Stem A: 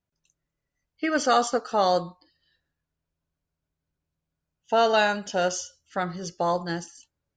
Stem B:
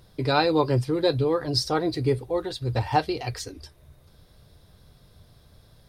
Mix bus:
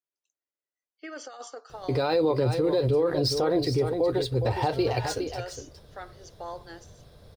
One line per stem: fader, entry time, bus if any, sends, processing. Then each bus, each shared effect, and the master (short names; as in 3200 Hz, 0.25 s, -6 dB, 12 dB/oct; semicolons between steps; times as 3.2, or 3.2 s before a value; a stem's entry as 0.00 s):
-15.0 dB, 0.00 s, no send, no echo send, steep high-pass 310 Hz 36 dB/oct; negative-ratio compressor -23 dBFS, ratio -0.5
+1.0 dB, 1.70 s, no send, echo send -9 dB, median filter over 3 samples; bell 510 Hz +8 dB 0.93 oct; limiter -14.5 dBFS, peak gain reduction 10 dB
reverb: off
echo: echo 0.412 s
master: limiter -16 dBFS, peak gain reduction 5 dB